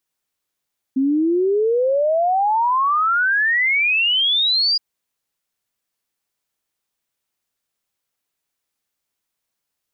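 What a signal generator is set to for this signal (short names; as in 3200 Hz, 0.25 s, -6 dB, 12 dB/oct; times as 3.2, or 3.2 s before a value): log sweep 260 Hz -> 4900 Hz 3.82 s -14.5 dBFS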